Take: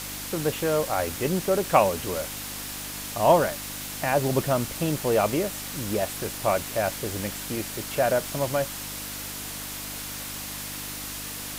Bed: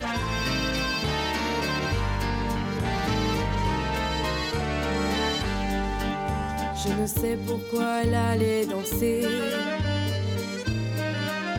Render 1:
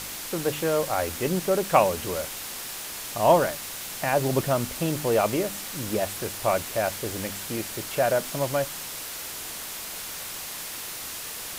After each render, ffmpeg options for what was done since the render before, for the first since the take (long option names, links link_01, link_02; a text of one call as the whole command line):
ffmpeg -i in.wav -af "bandreject=frequency=50:width_type=h:width=4,bandreject=frequency=100:width_type=h:width=4,bandreject=frequency=150:width_type=h:width=4,bandreject=frequency=200:width_type=h:width=4,bandreject=frequency=250:width_type=h:width=4,bandreject=frequency=300:width_type=h:width=4" out.wav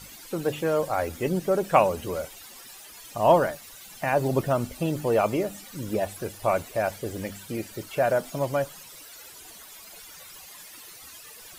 ffmpeg -i in.wav -af "afftdn=noise_reduction=15:noise_floor=-36" out.wav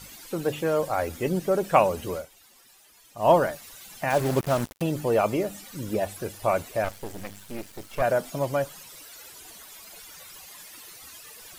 ffmpeg -i in.wav -filter_complex "[0:a]asettb=1/sr,asplit=3[link_01][link_02][link_03];[link_01]atrim=end=4.104[link_04];[link_02]atrim=start=4.1:end=4.82,asetpts=PTS-STARTPTS,afade=type=in:duration=0.004:curve=qsin,afade=type=out:start_time=0.716:duration=0.004:curve=qsin,acrusher=bits=4:mix=0:aa=0.5[link_05];[link_03]atrim=start=4.816[link_06];[link_04][link_05]acrossfade=duration=0.004:curve1=hsin:curve2=qsin[link_07];[link_07][link_06]acrossfade=duration=0.004:curve1=qsin:curve2=hsin,asettb=1/sr,asplit=3[link_08][link_09][link_10];[link_08]atrim=end=6.844[link_11];[link_09]atrim=start=6.84:end=8.02,asetpts=PTS-STARTPTS,afade=type=in:duration=0.004:curve=qsin,afade=type=out:start_time=1.176:duration=0.004:curve=qsin,aeval=exprs='max(val(0),0)':channel_layout=same[link_12];[link_10]atrim=start=8.016[link_13];[link_11][link_12]acrossfade=duration=0.004:curve1=hsin:curve2=qsin[link_14];[link_14][link_13]acrossfade=duration=0.004:curve1=qsin:curve2=hsin,asplit=3[link_15][link_16][link_17];[link_15]atrim=end=2.26,asetpts=PTS-STARTPTS,afade=type=out:start_time=2.13:duration=0.13:silence=0.298538[link_18];[link_16]atrim=start=2.26:end=3.16,asetpts=PTS-STARTPTS,volume=-10.5dB[link_19];[link_17]atrim=start=3.16,asetpts=PTS-STARTPTS,afade=type=in:duration=0.13:silence=0.298538[link_20];[link_18][link_19][link_20]concat=n=3:v=0:a=1" out.wav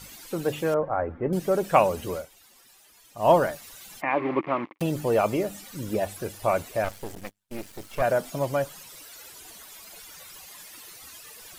ffmpeg -i in.wav -filter_complex "[0:a]asettb=1/sr,asplit=3[link_01][link_02][link_03];[link_01]atrim=end=0.744[link_04];[link_02]atrim=start=0.74:end=1.33,asetpts=PTS-STARTPTS,afade=type=in:duration=0.004:curve=qsin,afade=type=out:start_time=0.586:duration=0.004:curve=qsin,lowpass=frequency=1600:width=0.5412,lowpass=frequency=1600:width=1.3066[link_05];[link_03]atrim=start=1.326[link_06];[link_04][link_05]acrossfade=duration=0.004:curve1=hsin:curve2=qsin[link_07];[link_07][link_06]acrossfade=duration=0.004:curve1=qsin:curve2=hsin,asplit=3[link_08][link_09][link_10];[link_08]afade=type=out:start_time=4:duration=0.02[link_11];[link_09]highpass=290,equalizer=frequency=310:width_type=q:width=4:gain=10,equalizer=frequency=450:width_type=q:width=4:gain=-4,equalizer=frequency=650:width_type=q:width=4:gain=-6,equalizer=frequency=1100:width_type=q:width=4:gain=9,equalizer=frequency=1500:width_type=q:width=4:gain=-8,equalizer=frequency=2200:width_type=q:width=4:gain=9,lowpass=frequency=2500:width=0.5412,lowpass=frequency=2500:width=1.3066,afade=type=in:start_time=4:duration=0.02,afade=type=out:start_time=4.78:duration=0.02[link_12];[link_10]afade=type=in:start_time=4.78:duration=0.02[link_13];[link_11][link_12][link_13]amix=inputs=3:normalize=0,asettb=1/sr,asplit=3[link_14][link_15][link_16];[link_14]atrim=end=7.154[link_17];[link_15]atrim=start=7.15:end=7.61,asetpts=PTS-STARTPTS,afade=type=in:duration=0.004:curve=qsin,afade=type=out:start_time=0.456:duration=0.004:curve=qsin,agate=range=-36dB:threshold=-38dB:ratio=16:release=100:detection=peak[link_18];[link_16]atrim=start=7.606[link_19];[link_17][link_18]acrossfade=duration=0.004:curve1=hsin:curve2=qsin[link_20];[link_20][link_19]acrossfade=duration=0.004:curve1=qsin:curve2=hsin" out.wav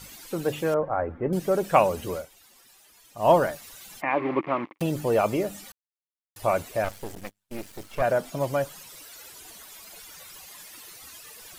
ffmpeg -i in.wav -filter_complex "[0:a]asettb=1/sr,asplit=3[link_01][link_02][link_03];[link_01]atrim=end=7.834[link_04];[link_02]atrim=start=7.83:end=8.4,asetpts=PTS-STARTPTS,afade=type=in:duration=0.004:curve=qsin,afade=type=out:start_time=0.566:duration=0.004:curve=qsin,highshelf=frequency=5300:gain=-4[link_05];[link_03]atrim=start=8.396[link_06];[link_04][link_05]acrossfade=duration=0.004:curve1=hsin:curve2=qsin[link_07];[link_07][link_06]acrossfade=duration=0.004:curve1=qsin:curve2=hsin,asplit=3[link_08][link_09][link_10];[link_08]atrim=end=5.72,asetpts=PTS-STARTPTS,afade=type=out:start_time=5.716:duration=0.004:curve=hsin[link_11];[link_09]atrim=start=5.72:end=6.36,asetpts=PTS-STARTPTS,volume=0[link_12];[link_10]atrim=start=6.36,asetpts=PTS-STARTPTS,afade=type=in:duration=0.004:curve=hsin[link_13];[link_11][link_12][link_13]concat=n=3:v=0:a=1" out.wav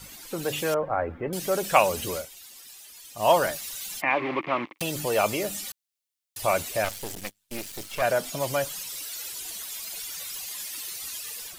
ffmpeg -i in.wav -filter_complex "[0:a]acrossover=split=500|2400[link_01][link_02][link_03];[link_01]alimiter=level_in=3.5dB:limit=-24dB:level=0:latency=1,volume=-3.5dB[link_04];[link_03]dynaudnorm=framelen=300:gausssize=3:maxgain=10dB[link_05];[link_04][link_02][link_05]amix=inputs=3:normalize=0" out.wav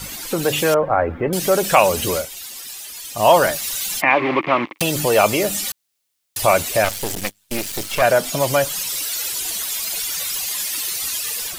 ffmpeg -i in.wav -filter_complex "[0:a]asplit=2[link_01][link_02];[link_02]acompressor=threshold=-36dB:ratio=6,volume=-1dB[link_03];[link_01][link_03]amix=inputs=2:normalize=0,alimiter=level_in=7.5dB:limit=-1dB:release=50:level=0:latency=1" out.wav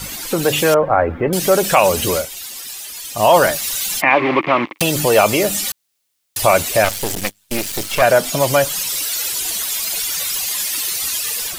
ffmpeg -i in.wav -af "volume=3dB,alimiter=limit=-1dB:level=0:latency=1" out.wav